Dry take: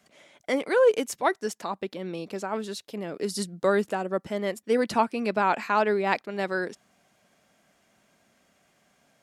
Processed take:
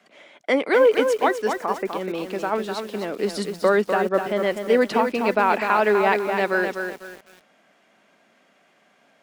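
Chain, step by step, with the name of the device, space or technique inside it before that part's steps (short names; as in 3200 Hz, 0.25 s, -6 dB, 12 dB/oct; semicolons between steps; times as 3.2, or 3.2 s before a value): 1.53–1.93 steep low-pass 2400 Hz 72 dB/oct; DJ mixer with the lows and highs turned down (three-band isolator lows -21 dB, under 190 Hz, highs -16 dB, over 3500 Hz; limiter -16 dBFS, peak gain reduction 7 dB); bell 8700 Hz +5 dB 2.7 oct; lo-fi delay 0.25 s, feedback 35%, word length 8-bit, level -6 dB; gain +6.5 dB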